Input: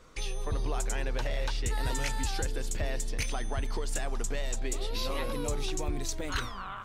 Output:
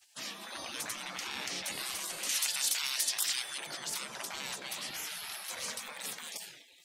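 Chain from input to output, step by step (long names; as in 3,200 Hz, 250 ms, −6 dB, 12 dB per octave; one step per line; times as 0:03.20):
gate on every frequency bin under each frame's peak −30 dB weak
0:02.29–0:03.58: tilt shelving filter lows −9.5 dB, about 1,200 Hz
level +8 dB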